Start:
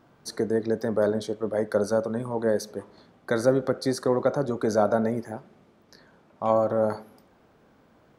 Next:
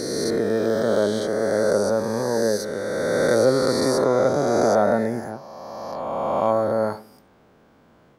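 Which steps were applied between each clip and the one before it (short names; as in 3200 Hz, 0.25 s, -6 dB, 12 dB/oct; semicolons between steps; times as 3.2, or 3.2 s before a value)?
spectral swells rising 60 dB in 2.91 s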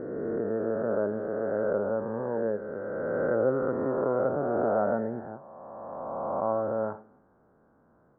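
elliptic low-pass 1500 Hz, stop band 80 dB; gain -7.5 dB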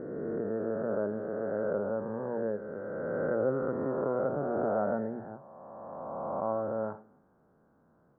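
bell 160 Hz +4 dB 0.88 oct; notches 60/120 Hz; gain -4 dB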